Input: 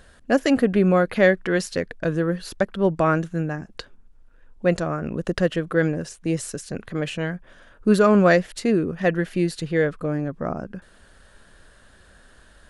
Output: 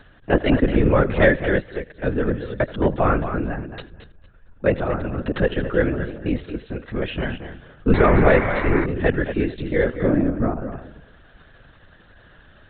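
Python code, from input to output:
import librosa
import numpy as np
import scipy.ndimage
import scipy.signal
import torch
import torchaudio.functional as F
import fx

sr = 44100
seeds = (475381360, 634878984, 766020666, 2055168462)

p1 = fx.peak_eq(x, sr, hz=220.0, db=11.5, octaves=0.99, at=(9.94, 10.49))
p2 = p1 + 10.0 ** (-19.5 / 20.0) * np.pad(p1, (int(84 * sr / 1000.0), 0))[:len(p1)]
p3 = fx.vibrato(p2, sr, rate_hz=0.86, depth_cents=15.0)
p4 = p3 + fx.echo_feedback(p3, sr, ms=225, feedback_pct=18, wet_db=-10.0, dry=0)
p5 = fx.dmg_buzz(p4, sr, base_hz=100.0, harmonics=23, level_db=-27.0, tilt_db=0, odd_only=False, at=(7.93, 8.84), fade=0.02)
p6 = fx.lpc_vocoder(p5, sr, seeds[0], excitation='whisper', order=16)
p7 = fx.upward_expand(p6, sr, threshold_db=-29.0, expansion=1.5, at=(1.59, 2.02), fade=0.02)
y = p7 * librosa.db_to_amplitude(1.0)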